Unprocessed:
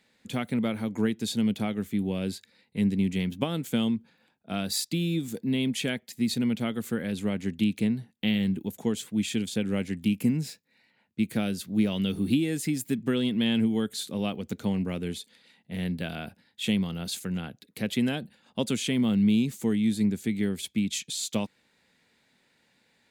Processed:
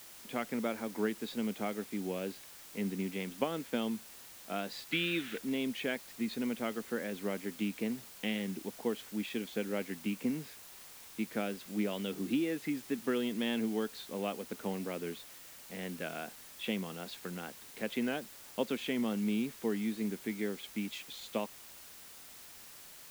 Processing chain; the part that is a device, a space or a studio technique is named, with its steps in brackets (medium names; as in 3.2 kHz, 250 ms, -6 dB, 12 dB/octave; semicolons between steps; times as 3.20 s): wax cylinder (band-pass 350–2200 Hz; wow and flutter; white noise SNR 15 dB); 4.92–5.38 s: high-order bell 2.2 kHz +13 dB; trim -1.5 dB